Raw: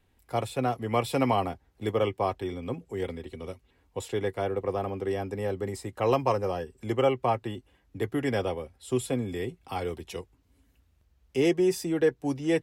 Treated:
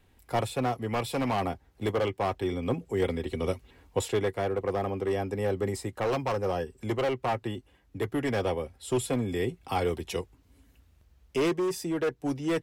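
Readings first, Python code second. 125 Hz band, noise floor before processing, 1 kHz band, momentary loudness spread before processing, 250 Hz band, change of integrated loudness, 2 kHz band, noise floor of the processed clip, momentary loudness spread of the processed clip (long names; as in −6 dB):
+0.5 dB, −68 dBFS, −1.0 dB, 13 LU, −1.0 dB, −1.0 dB, +1.0 dB, −64 dBFS, 6 LU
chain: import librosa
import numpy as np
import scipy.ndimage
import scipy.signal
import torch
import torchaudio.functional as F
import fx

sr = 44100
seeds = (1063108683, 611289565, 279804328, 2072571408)

y = np.clip(10.0 ** (23.5 / 20.0) * x, -1.0, 1.0) / 10.0 ** (23.5 / 20.0)
y = fx.rider(y, sr, range_db=10, speed_s=0.5)
y = y * 10.0 ** (1.5 / 20.0)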